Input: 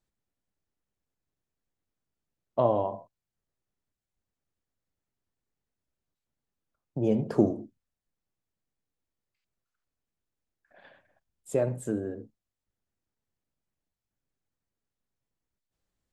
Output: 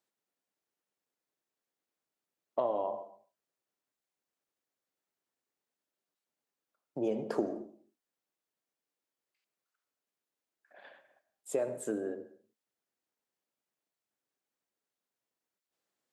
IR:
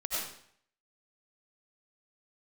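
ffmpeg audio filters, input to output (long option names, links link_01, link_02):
-filter_complex "[0:a]highpass=340,acompressor=threshold=-29dB:ratio=5,asplit=2[link_01][link_02];[1:a]atrim=start_sample=2205,afade=type=out:start_time=0.34:duration=0.01,atrim=end_sample=15435,highshelf=frequency=4000:gain=-9.5[link_03];[link_02][link_03]afir=irnorm=-1:irlink=0,volume=-16.5dB[link_04];[link_01][link_04]amix=inputs=2:normalize=0"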